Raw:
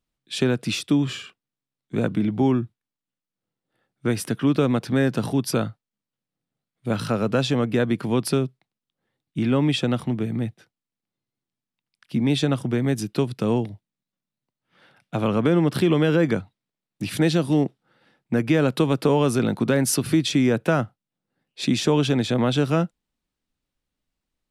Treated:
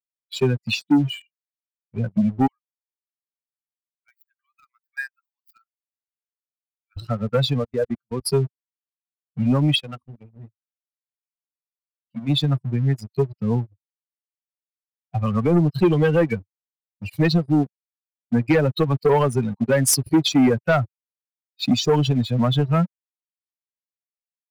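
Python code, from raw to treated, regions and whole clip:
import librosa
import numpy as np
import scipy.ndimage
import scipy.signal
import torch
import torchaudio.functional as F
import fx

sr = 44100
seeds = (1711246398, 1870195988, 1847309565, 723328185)

y = fx.chain(x, sr, fx.median_filter(points=15),
    fx.highpass(hz=1300.0, slope=24), at=(2.47, 6.97))
y = fx.chain(y, sr, fx.peak_eq(hz=560.0, db=4.5, octaves=0.8),
    fx.level_steps(step_db=21), at=(7.59, 8.21))
y = fx.chain(y, sr, fx.low_shelf(hz=390.0, db=-5.0),
    fx.hum_notches(base_hz=50, count=8), at=(9.74, 12.29))
y = fx.bin_expand(y, sr, power=3.0)
y = fx.leveller(y, sr, passes=2)
y = y * librosa.db_to_amplitude(3.5)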